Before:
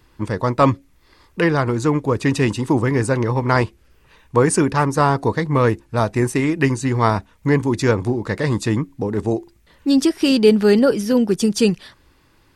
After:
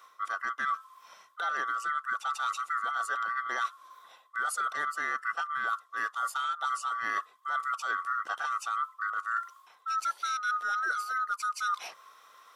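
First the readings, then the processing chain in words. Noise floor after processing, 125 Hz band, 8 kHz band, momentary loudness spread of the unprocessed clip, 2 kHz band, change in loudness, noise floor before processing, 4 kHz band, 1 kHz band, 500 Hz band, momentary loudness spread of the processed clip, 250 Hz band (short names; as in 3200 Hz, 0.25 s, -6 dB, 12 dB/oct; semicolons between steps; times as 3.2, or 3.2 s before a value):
-61 dBFS, under -40 dB, -13.0 dB, 8 LU, -4.5 dB, -13.5 dB, -56 dBFS, -13.5 dB, -6.0 dB, -33.0 dB, 4 LU, under -40 dB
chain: band-swap scrambler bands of 1000 Hz; HPF 550 Hz 12 dB/oct; reverse; compressor 10:1, threshold -29 dBFS, peak gain reduction 21 dB; reverse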